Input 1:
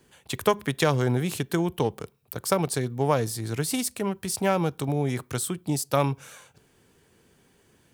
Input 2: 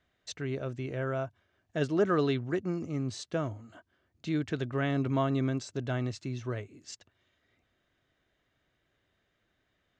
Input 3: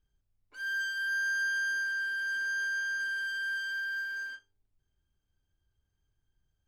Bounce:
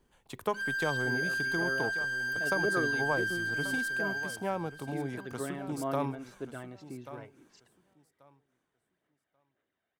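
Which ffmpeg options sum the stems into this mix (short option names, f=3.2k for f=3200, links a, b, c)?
-filter_complex "[0:a]equalizer=f=920:w=0.91:g=8,volume=-16dB,asplit=2[a][b];[b]volume=-13.5dB[c];[1:a]bandpass=f=1k:t=q:w=0.51:csg=0,aphaser=in_gain=1:out_gain=1:delay=1.4:decay=0.43:speed=1.9:type=sinusoidal,adelay=650,volume=-8.5dB[d];[2:a]acompressor=threshold=-33dB:ratio=6,volume=34dB,asoftclip=hard,volume=-34dB,volume=3dB,asplit=2[e][f];[f]volume=-18dB[g];[c][g]amix=inputs=2:normalize=0,aecho=0:1:1136|2272|3408:1|0.18|0.0324[h];[a][d][e][h]amix=inputs=4:normalize=0,equalizer=f=270:w=0.8:g=5.5"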